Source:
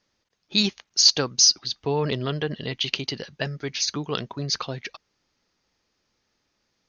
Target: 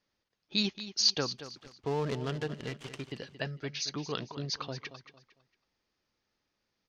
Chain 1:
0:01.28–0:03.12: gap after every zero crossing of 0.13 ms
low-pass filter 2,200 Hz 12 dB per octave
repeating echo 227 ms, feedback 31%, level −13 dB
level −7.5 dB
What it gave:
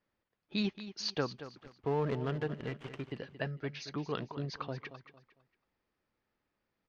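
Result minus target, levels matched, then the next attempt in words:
4,000 Hz band −6.5 dB
0:01.28–0:03.12: gap after every zero crossing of 0.13 ms
low-pass filter 5,500 Hz 12 dB per octave
repeating echo 227 ms, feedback 31%, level −13 dB
level −7.5 dB

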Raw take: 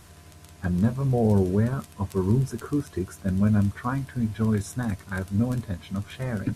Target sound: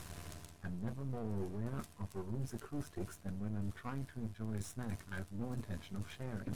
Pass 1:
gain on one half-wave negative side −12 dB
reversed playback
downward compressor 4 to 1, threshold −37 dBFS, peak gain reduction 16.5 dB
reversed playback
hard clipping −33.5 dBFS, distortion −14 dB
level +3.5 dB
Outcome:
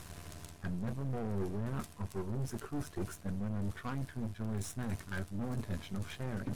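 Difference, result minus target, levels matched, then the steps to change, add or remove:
downward compressor: peak gain reduction −5 dB
change: downward compressor 4 to 1, threshold −44 dBFS, peak gain reduction 22 dB

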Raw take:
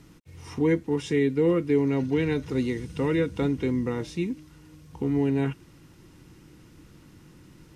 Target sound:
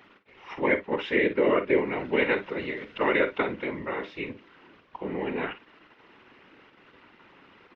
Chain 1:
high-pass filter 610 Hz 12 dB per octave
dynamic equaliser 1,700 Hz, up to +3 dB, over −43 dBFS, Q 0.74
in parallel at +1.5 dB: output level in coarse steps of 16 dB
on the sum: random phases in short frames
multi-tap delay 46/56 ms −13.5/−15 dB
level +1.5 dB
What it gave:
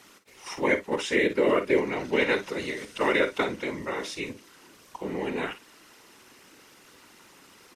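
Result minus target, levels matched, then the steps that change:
4,000 Hz band +4.5 dB
add after dynamic equaliser: low-pass filter 3,000 Hz 24 dB per octave

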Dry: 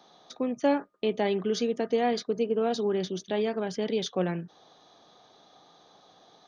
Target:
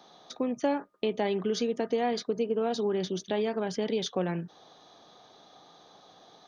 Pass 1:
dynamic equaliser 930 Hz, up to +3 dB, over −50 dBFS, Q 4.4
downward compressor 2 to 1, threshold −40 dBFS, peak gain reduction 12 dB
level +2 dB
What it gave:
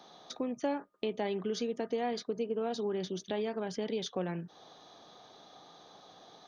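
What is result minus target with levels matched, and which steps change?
downward compressor: peak gain reduction +5 dB
change: downward compressor 2 to 1, threshold −29.5 dBFS, peak gain reduction 6.5 dB

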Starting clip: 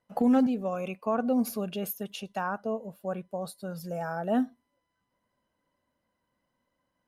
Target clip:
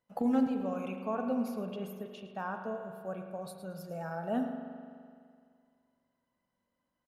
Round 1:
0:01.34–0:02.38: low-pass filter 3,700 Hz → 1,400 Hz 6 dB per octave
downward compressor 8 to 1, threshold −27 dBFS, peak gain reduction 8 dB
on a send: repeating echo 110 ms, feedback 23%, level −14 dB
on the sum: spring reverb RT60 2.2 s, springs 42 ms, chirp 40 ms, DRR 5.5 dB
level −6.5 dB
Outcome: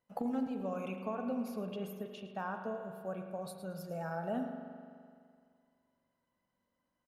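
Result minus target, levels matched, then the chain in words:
downward compressor: peak gain reduction +8 dB
0:01.34–0:02.38: low-pass filter 3,700 Hz → 1,400 Hz 6 dB per octave
on a send: repeating echo 110 ms, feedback 23%, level −14 dB
on the sum: spring reverb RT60 2.2 s, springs 42 ms, chirp 40 ms, DRR 5.5 dB
level −6.5 dB

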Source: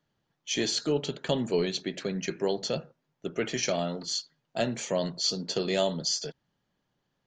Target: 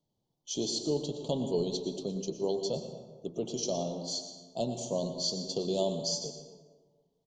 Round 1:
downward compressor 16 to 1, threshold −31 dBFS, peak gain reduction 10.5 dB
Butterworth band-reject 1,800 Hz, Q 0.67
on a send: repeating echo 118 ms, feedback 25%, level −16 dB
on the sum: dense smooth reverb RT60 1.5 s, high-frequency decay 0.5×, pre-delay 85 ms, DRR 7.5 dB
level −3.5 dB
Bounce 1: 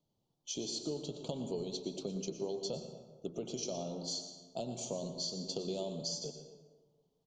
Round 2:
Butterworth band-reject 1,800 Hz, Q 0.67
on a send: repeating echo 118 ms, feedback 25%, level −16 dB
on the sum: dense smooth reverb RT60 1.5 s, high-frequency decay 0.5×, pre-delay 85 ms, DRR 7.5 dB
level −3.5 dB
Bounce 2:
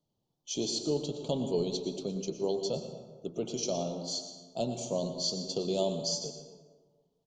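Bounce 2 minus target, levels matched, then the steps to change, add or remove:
2,000 Hz band +5.5 dB
add after Butterworth band-reject: flat-topped bell 1,800 Hz −11 dB 1.1 octaves

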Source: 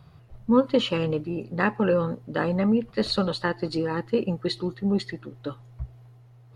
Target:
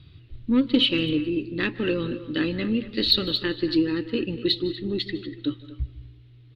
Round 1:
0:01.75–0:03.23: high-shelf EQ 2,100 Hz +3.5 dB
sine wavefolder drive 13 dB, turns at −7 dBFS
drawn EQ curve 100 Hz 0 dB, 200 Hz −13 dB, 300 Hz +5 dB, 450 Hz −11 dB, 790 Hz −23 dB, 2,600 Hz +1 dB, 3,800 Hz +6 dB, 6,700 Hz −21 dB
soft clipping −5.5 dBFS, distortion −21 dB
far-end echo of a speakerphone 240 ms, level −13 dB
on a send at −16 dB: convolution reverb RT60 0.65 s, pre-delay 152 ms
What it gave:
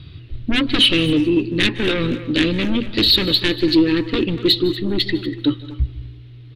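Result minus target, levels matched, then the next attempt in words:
sine wavefolder: distortion +21 dB
0:01.75–0:03.23: high-shelf EQ 2,100 Hz +3.5 dB
sine wavefolder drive 2 dB, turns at −7 dBFS
drawn EQ curve 100 Hz 0 dB, 200 Hz −13 dB, 300 Hz +5 dB, 450 Hz −11 dB, 790 Hz −23 dB, 2,600 Hz +1 dB, 3,800 Hz +6 dB, 6,700 Hz −21 dB
soft clipping −5.5 dBFS, distortion −28 dB
far-end echo of a speakerphone 240 ms, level −13 dB
on a send at −16 dB: convolution reverb RT60 0.65 s, pre-delay 152 ms

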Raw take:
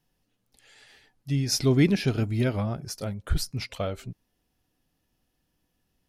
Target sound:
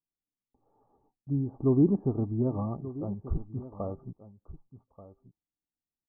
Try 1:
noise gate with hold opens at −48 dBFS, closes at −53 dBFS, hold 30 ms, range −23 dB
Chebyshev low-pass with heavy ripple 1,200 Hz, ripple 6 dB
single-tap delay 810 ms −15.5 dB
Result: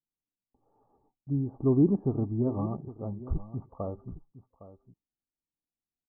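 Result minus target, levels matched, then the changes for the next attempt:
echo 374 ms early
change: single-tap delay 1,184 ms −15.5 dB

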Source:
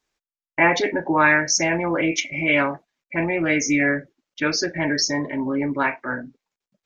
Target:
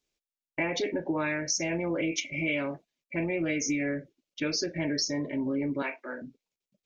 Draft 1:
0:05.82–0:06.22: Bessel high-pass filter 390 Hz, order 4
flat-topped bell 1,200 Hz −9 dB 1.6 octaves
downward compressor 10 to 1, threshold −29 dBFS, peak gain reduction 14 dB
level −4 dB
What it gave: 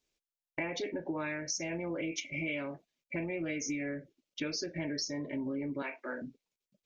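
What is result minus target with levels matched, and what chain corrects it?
downward compressor: peak gain reduction +7 dB
0:05.82–0:06.22: Bessel high-pass filter 390 Hz, order 4
flat-topped bell 1,200 Hz −9 dB 1.6 octaves
downward compressor 10 to 1, threshold −21.5 dBFS, peak gain reduction 7.5 dB
level −4 dB

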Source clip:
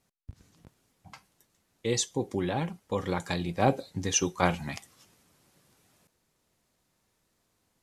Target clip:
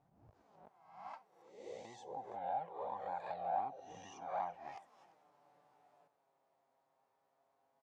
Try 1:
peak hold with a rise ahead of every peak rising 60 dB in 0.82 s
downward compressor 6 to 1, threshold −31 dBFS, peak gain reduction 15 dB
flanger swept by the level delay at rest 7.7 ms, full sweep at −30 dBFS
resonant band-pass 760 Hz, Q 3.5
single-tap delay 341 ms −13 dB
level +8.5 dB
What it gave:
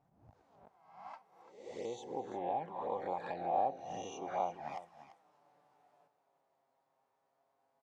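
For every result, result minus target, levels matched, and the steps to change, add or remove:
echo-to-direct +8 dB; downward compressor: peak gain reduction −5 dB
change: single-tap delay 341 ms −21 dB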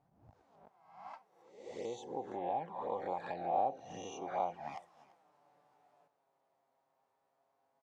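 downward compressor: peak gain reduction −5 dB
change: downward compressor 6 to 1, threshold −37 dBFS, peak gain reduction 20 dB

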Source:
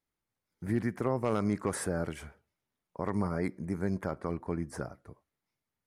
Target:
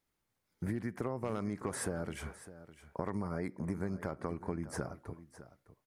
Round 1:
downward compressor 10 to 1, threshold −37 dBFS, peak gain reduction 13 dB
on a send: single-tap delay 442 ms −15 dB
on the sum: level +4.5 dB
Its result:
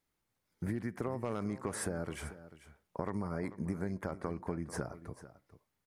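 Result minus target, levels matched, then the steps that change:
echo 165 ms early
change: single-tap delay 607 ms −15 dB

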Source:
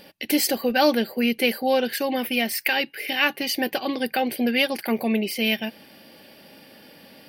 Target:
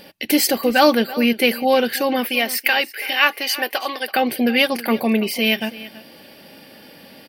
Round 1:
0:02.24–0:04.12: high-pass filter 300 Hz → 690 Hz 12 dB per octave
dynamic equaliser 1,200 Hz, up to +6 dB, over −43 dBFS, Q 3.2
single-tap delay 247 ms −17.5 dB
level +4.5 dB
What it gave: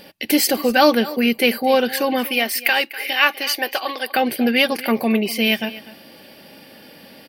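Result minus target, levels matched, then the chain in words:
echo 83 ms early
0:02.24–0:04.12: high-pass filter 300 Hz → 690 Hz 12 dB per octave
dynamic equaliser 1,200 Hz, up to +6 dB, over −43 dBFS, Q 3.2
single-tap delay 330 ms −17.5 dB
level +4.5 dB

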